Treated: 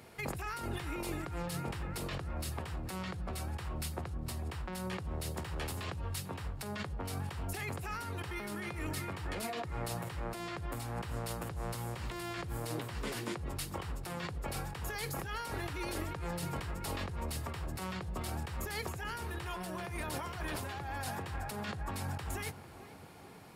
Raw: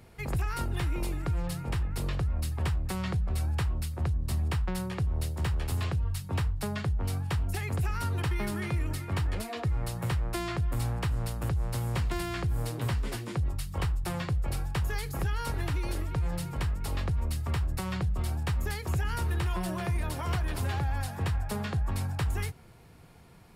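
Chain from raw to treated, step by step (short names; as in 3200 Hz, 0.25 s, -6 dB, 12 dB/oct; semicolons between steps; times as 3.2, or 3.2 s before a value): HPF 270 Hz 6 dB/oct; negative-ratio compressor -40 dBFS, ratio -1; tape echo 0.445 s, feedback 81%, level -12 dB, low-pass 1300 Hz; gain +1 dB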